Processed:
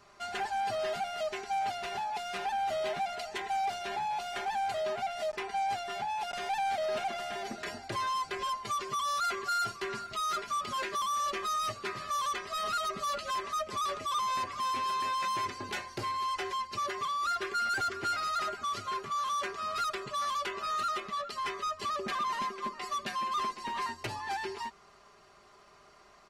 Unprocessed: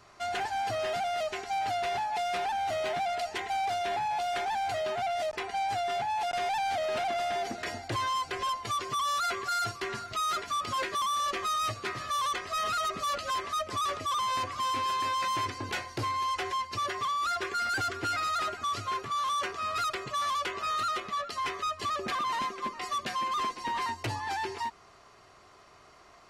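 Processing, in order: comb 5 ms, depth 49%; trim -3.5 dB

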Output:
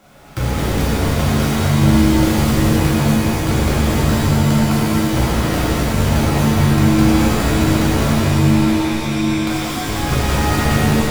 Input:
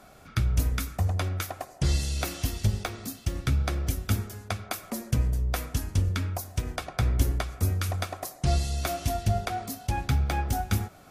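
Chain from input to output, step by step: square wave that keeps the level; 8.10–9.46 s: four-pole ladder low-pass 2.5 kHz, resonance 85%; pitch-shifted reverb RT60 3.4 s, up +7 st, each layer -2 dB, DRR -9.5 dB; trim -4.5 dB

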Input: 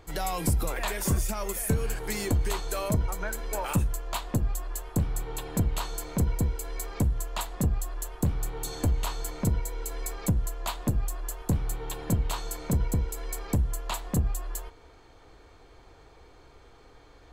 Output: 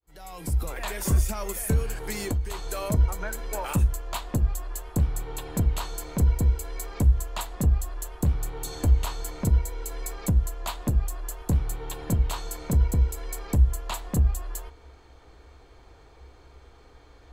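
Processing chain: fade-in on the opening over 1.08 s; peaking EQ 65 Hz +13 dB 0.28 oct; 1.82–2.82 s: compression 3:1, threshold -26 dBFS, peak gain reduction 10 dB

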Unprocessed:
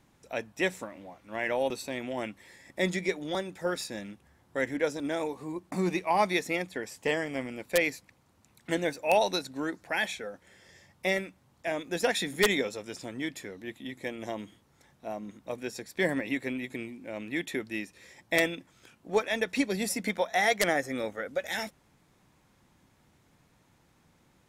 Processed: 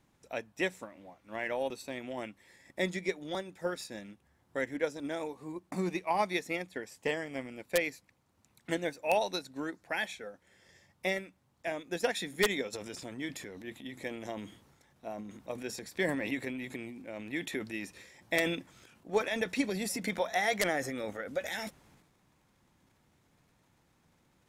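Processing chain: transient shaper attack +3 dB, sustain -2 dB, from 12.72 s sustain +9 dB; trim -5.5 dB

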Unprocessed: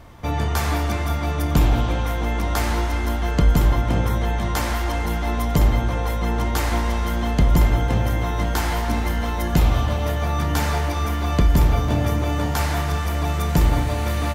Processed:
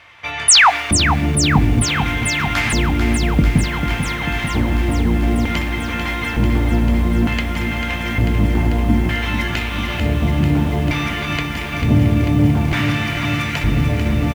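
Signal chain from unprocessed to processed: resonant low shelf 150 Hz +7 dB, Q 1.5; compression, threshold -10 dBFS, peak gain reduction 7 dB; LFO band-pass square 0.55 Hz 230–2400 Hz; painted sound fall, 0.48–0.70 s, 650–11000 Hz -20 dBFS; doubling 20 ms -13 dB; loudness maximiser +17 dB; bit-crushed delay 443 ms, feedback 80%, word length 6-bit, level -7.5 dB; trim -2.5 dB

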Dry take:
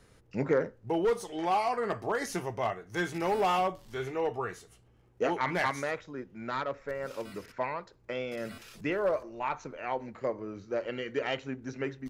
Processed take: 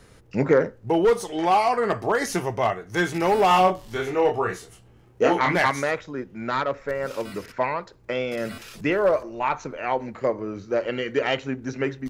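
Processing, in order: 3.48–5.56 s: doubling 27 ms -4 dB; trim +8.5 dB

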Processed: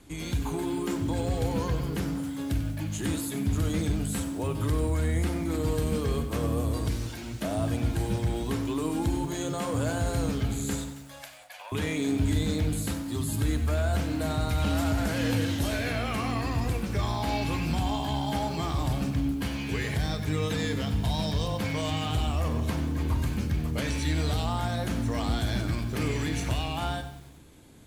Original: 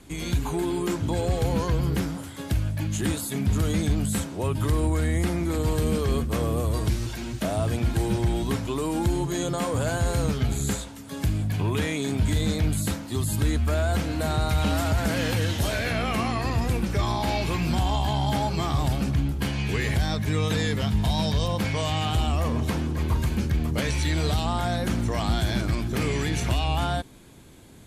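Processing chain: 10.90–11.72 s: rippled Chebyshev high-pass 520 Hz, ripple 3 dB; FDN reverb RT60 0.76 s, low-frequency decay 1.45×, high-frequency decay 0.75×, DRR 11 dB; bit-crushed delay 94 ms, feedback 55%, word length 7-bit, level -12 dB; trim -4.5 dB

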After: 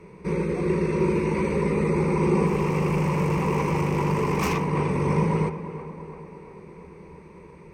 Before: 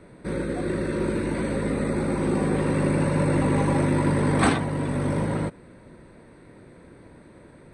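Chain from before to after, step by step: tape echo 341 ms, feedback 67%, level -11.5 dB, low-pass 2.2 kHz; 2.47–4.68 s: hard clipper -23.5 dBFS, distortion -8 dB; rippled EQ curve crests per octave 0.79, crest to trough 14 dB

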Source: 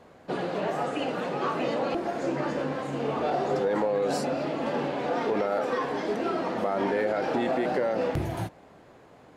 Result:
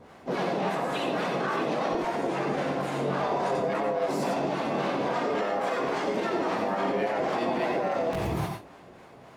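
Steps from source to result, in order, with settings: harmonic tremolo 3.6 Hz, depth 70%, crossover 550 Hz; harmony voices +5 st -3 dB; peak limiter -24.5 dBFS, peak gain reduction 7.5 dB; on a send: reverberation RT60 0.20 s, pre-delay 85 ms, DRR 3.5 dB; on the sum: trim +3.5 dB

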